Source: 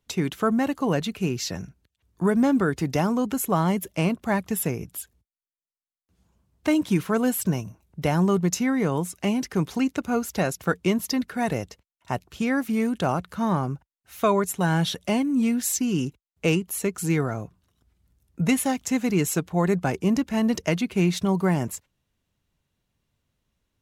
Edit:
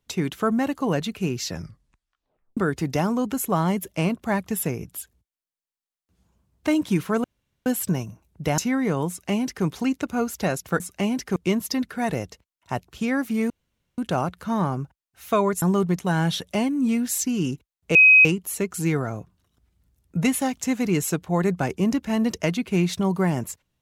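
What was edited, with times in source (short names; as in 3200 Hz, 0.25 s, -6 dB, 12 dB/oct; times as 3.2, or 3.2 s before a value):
1.51 tape stop 1.06 s
7.24 insert room tone 0.42 s
8.16–8.53 move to 14.53
9.04–9.6 copy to 10.75
12.89 insert room tone 0.48 s
16.49 add tone 2530 Hz -9 dBFS 0.30 s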